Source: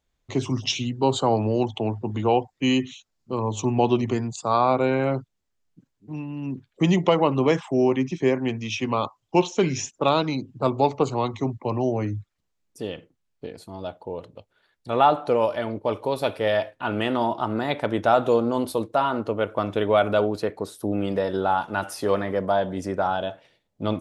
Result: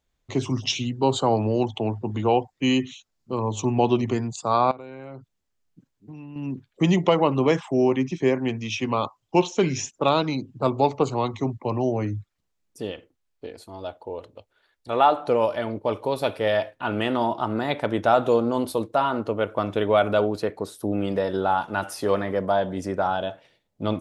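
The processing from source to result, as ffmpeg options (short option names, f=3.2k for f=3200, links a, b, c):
-filter_complex "[0:a]asettb=1/sr,asplit=3[a][b][c];[a]atrim=end=4.714[d];[b]atrim=start=4.71:end=6.36,asetpts=PTS-STARTPTS,afade=t=in:d=0.004:c=qsin,afade=t=out:st=1.646:d=0.004:c=qsin,acompressor=threshold=-36dB:ratio=8:attack=3.2:release=140:knee=1:detection=peak[e];[c]atrim=start=6.356[f];[d][e]acrossfade=d=0.004:c1=hsin:c2=qsin[g];[g][f]acrossfade=d=0.004:c1=qsin:c2=hsin,asettb=1/sr,asplit=3[h][i][j];[h]atrim=end=12.914[k];[i]atrim=start=12.91:end=15.2,asetpts=PTS-STARTPTS,afade=t=in:d=0.004:c=qsin,afade=t=out:st=2.286:d=0.004:c=qsin,equalizer=f=160:t=o:w=0.77:g=-11.5[l];[j]atrim=start=15.196[m];[k][l]acrossfade=d=0.004:c1=hsin:c2=qsin[n];[n][m]acrossfade=d=0.004:c1=qsin:c2=hsin"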